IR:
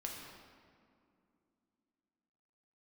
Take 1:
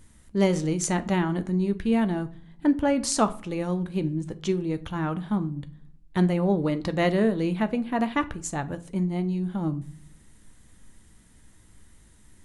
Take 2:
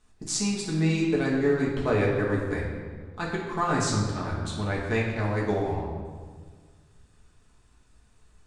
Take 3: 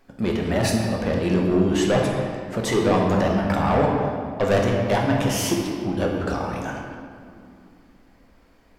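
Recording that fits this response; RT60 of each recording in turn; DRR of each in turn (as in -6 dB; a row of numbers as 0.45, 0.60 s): 3; not exponential, 1.6 s, not exponential; 9.5, -5.0, -1.5 dB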